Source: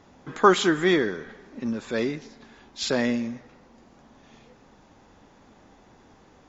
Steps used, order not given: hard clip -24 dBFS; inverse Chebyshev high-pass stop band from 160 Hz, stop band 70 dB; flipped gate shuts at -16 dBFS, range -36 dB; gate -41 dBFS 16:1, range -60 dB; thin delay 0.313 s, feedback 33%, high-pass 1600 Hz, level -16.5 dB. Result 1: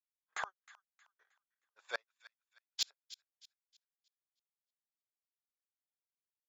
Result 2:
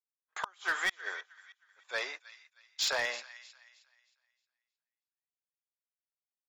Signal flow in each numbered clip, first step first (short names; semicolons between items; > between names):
flipped gate > inverse Chebyshev high-pass > hard clip > gate > thin delay; inverse Chebyshev high-pass > gate > flipped gate > thin delay > hard clip